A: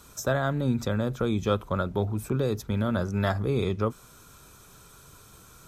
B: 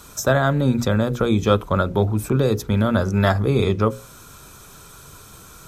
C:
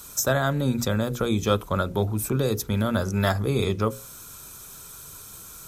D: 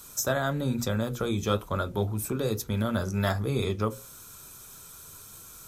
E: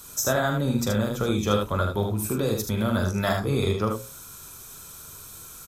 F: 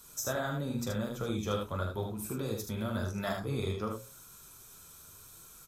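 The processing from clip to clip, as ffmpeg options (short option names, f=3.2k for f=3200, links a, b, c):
-af "bandreject=f=60:t=h:w=6,bandreject=f=120:t=h:w=6,bandreject=f=180:t=h:w=6,bandreject=f=240:t=h:w=6,bandreject=f=300:t=h:w=6,bandreject=f=360:t=h:w=6,bandreject=f=420:t=h:w=6,bandreject=f=480:t=h:w=6,bandreject=f=540:t=h:w=6,volume=8.5dB"
-af "crystalizer=i=2:c=0,volume=-5.5dB"
-af "flanger=delay=8:depth=3.5:regen=-64:speed=1.1:shape=sinusoidal"
-af "aecho=1:1:43|76:0.355|0.562,volume=2.5dB"
-af "flanger=delay=4.1:depth=9.7:regen=-49:speed=0.91:shape=triangular,volume=-6dB"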